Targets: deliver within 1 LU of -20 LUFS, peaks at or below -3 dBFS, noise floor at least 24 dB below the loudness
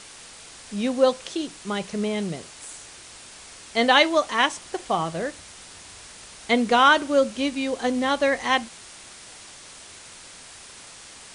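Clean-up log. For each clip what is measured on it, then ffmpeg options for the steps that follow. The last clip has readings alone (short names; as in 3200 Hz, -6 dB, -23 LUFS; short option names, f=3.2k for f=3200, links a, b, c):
noise floor -45 dBFS; noise floor target -47 dBFS; loudness -22.5 LUFS; peak -4.0 dBFS; loudness target -20.0 LUFS
-> -af "afftdn=nr=6:nf=-45"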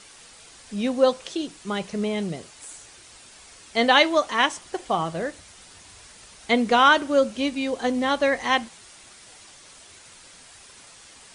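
noise floor -49 dBFS; loudness -22.5 LUFS; peak -4.0 dBFS; loudness target -20.0 LUFS
-> -af "volume=2.5dB,alimiter=limit=-3dB:level=0:latency=1"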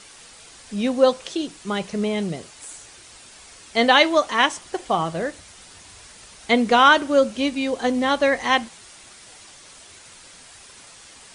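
loudness -20.0 LUFS; peak -3.0 dBFS; noise floor -46 dBFS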